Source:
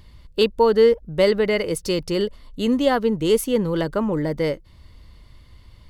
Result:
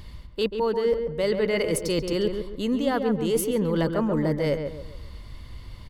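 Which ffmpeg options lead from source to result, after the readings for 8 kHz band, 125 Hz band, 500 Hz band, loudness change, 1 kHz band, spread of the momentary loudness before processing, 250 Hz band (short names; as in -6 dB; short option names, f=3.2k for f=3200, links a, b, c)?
-0.5 dB, -0.5 dB, -5.0 dB, -4.5 dB, -5.5 dB, 8 LU, -3.0 dB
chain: -filter_complex "[0:a]areverse,acompressor=threshold=-28dB:ratio=6,areverse,asplit=2[a][b];[b]adelay=138,lowpass=f=1.8k:p=1,volume=-6dB,asplit=2[c][d];[d]adelay=138,lowpass=f=1.8k:p=1,volume=0.38,asplit=2[e][f];[f]adelay=138,lowpass=f=1.8k:p=1,volume=0.38,asplit=2[g][h];[h]adelay=138,lowpass=f=1.8k:p=1,volume=0.38,asplit=2[i][j];[j]adelay=138,lowpass=f=1.8k:p=1,volume=0.38[k];[a][c][e][g][i][k]amix=inputs=6:normalize=0,volume=5.5dB"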